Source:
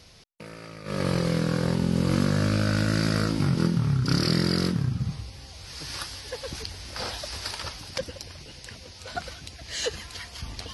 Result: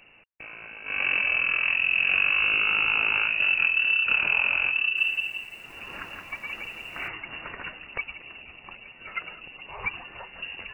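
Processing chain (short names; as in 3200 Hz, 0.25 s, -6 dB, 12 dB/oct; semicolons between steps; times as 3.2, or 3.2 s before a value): HPF 50 Hz; inverted band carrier 2800 Hz; 4.8–7.08 lo-fi delay 0.17 s, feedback 35%, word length 9-bit, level -3.5 dB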